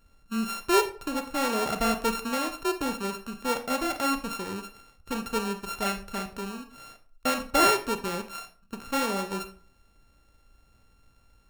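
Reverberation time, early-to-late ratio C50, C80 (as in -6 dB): 0.45 s, 11.0 dB, 16.0 dB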